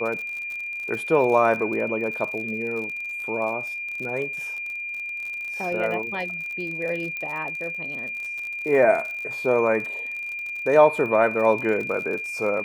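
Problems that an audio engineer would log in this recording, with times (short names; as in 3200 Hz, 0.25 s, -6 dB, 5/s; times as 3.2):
crackle 52/s -31 dBFS
tone 2400 Hz -29 dBFS
7.17 pop -19 dBFS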